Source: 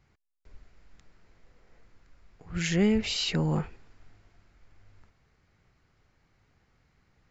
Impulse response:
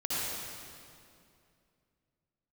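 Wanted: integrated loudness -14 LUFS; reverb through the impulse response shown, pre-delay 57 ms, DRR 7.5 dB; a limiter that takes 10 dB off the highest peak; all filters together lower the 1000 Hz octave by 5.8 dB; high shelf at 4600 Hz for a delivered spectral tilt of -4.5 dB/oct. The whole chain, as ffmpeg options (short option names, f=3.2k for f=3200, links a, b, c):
-filter_complex "[0:a]equalizer=f=1k:t=o:g=-8,highshelf=f=4.6k:g=4.5,alimiter=limit=-23dB:level=0:latency=1,asplit=2[a][b];[1:a]atrim=start_sample=2205,adelay=57[c];[b][c]afir=irnorm=-1:irlink=0,volume=-15dB[d];[a][d]amix=inputs=2:normalize=0,volume=18dB"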